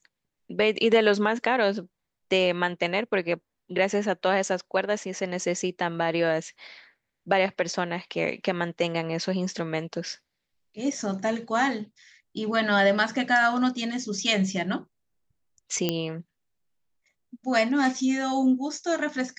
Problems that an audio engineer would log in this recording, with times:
15.89 s: pop -10 dBFS

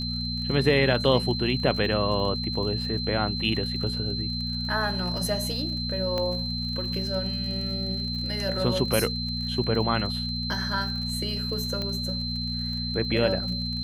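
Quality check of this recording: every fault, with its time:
crackle 40 per s -34 dBFS
hum 60 Hz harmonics 4 -32 dBFS
whine 4.1 kHz -31 dBFS
6.18 s: pop -16 dBFS
11.82 s: pop -18 dBFS

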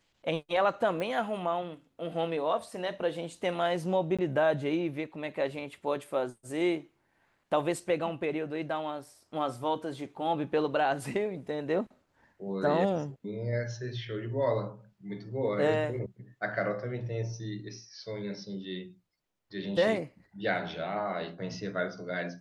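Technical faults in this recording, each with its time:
1.00 s: pop -23 dBFS
4.17–4.19 s: dropout 16 ms

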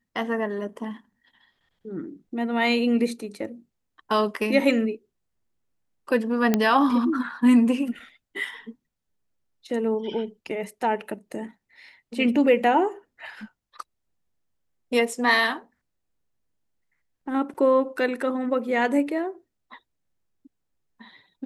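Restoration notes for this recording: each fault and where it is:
6.54 s: pop -7 dBFS

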